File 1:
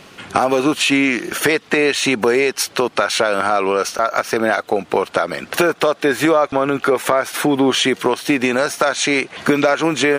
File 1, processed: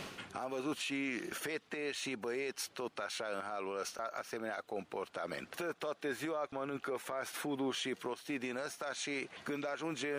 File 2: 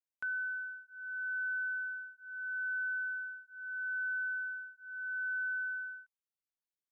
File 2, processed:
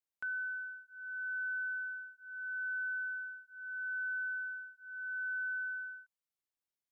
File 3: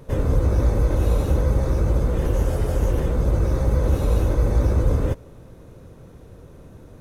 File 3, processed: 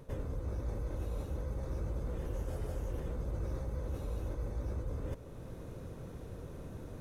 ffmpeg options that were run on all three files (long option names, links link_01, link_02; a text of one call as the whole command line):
ffmpeg -i in.wav -af "areverse,acompressor=threshold=-30dB:ratio=8,areverse,alimiter=level_in=3dB:limit=-24dB:level=0:latency=1:release=379,volume=-3dB,volume=-1.5dB" out.wav